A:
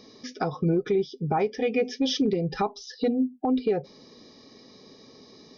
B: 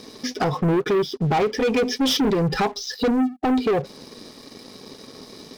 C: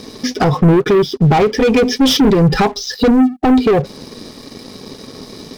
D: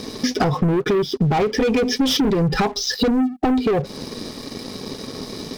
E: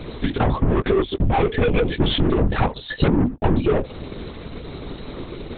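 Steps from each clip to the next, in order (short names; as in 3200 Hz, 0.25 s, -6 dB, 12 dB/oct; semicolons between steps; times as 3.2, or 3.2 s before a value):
sample leveller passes 3
low shelf 190 Hz +7.5 dB; gain +7 dB
compressor, threshold -18 dBFS, peak gain reduction 11 dB; gain +1.5 dB
LPC vocoder at 8 kHz whisper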